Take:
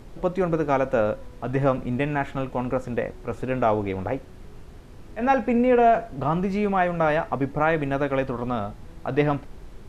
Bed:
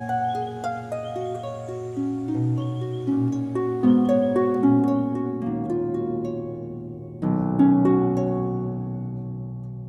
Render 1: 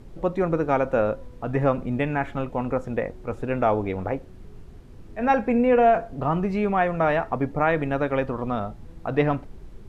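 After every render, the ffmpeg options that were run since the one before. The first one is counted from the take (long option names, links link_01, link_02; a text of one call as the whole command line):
ffmpeg -i in.wav -af "afftdn=noise_reduction=6:noise_floor=-44" out.wav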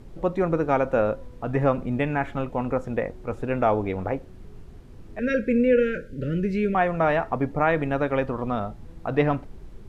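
ffmpeg -i in.wav -filter_complex "[0:a]asettb=1/sr,asplit=3[link_01][link_02][link_03];[link_01]atrim=end=5.194[link_04];[link_02]atrim=start=5.19:end=6.75,asetpts=PTS-STARTPTS,afade=type=in:duration=0.004:curve=qsin,afade=type=out:start_time=1.556:duration=0.004:curve=qsin,asuperstop=centerf=900:order=20:qfactor=1.1[link_05];[link_03]atrim=start=6.746[link_06];[link_04][link_05]acrossfade=duration=0.004:curve1=hsin:curve2=qsin[link_07];[link_07][link_06]acrossfade=duration=0.004:curve1=qsin:curve2=hsin" out.wav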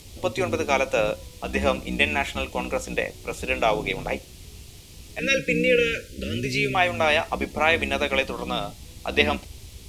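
ffmpeg -i in.wav -filter_complex "[0:a]acrossover=split=310[link_01][link_02];[link_01]aeval=exprs='val(0)*sin(2*PI*64*n/s)':channel_layout=same[link_03];[link_02]aexciter=amount=10:drive=3.9:freq=2300[link_04];[link_03][link_04]amix=inputs=2:normalize=0" out.wav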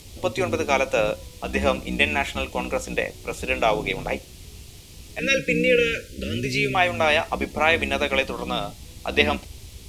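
ffmpeg -i in.wav -af "volume=1dB" out.wav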